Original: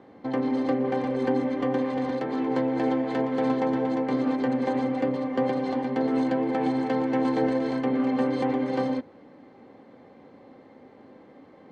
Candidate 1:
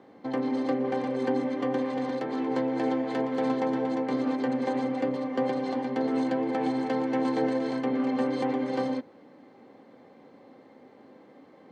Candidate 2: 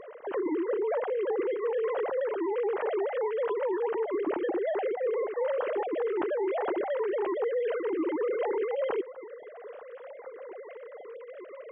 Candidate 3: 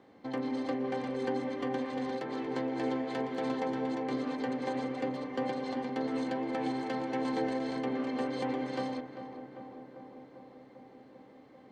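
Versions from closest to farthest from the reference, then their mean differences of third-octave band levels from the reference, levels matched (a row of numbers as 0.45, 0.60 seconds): 1, 3, 2; 1.0, 3.5, 10.0 decibels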